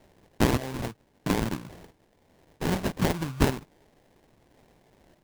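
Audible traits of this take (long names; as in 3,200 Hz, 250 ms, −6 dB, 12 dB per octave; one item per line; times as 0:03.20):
a quantiser's noise floor 10 bits, dither triangular
phaser sweep stages 8, 3.5 Hz, lowest notch 390–1,500 Hz
aliases and images of a low sample rate 1,300 Hz, jitter 20%
sample-and-hold tremolo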